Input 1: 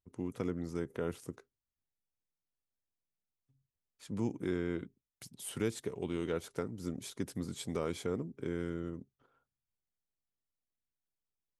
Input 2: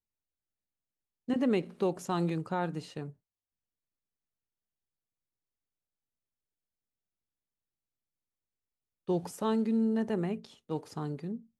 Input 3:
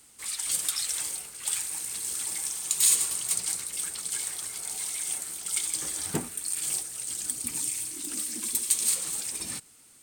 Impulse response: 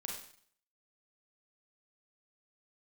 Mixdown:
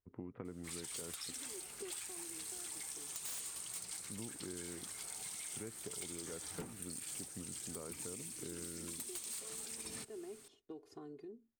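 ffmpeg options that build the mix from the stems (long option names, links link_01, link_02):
-filter_complex "[0:a]lowpass=frequency=2200:width=0.5412,lowpass=frequency=2200:width=1.3066,volume=-1.5dB[link_01];[1:a]acompressor=threshold=-40dB:ratio=5,equalizer=frequency=390:width_type=o:width=0.71:gain=9.5,aecho=1:1:2.8:0.82,volume=-12.5dB[link_02];[2:a]highshelf=frequency=4600:gain=-5,aeval=exprs='0.0631*(abs(mod(val(0)/0.0631+3,4)-2)-1)':channel_layout=same,adelay=450,volume=-0.5dB[link_03];[link_01][link_02][link_03]amix=inputs=3:normalize=0,acompressor=threshold=-43dB:ratio=6"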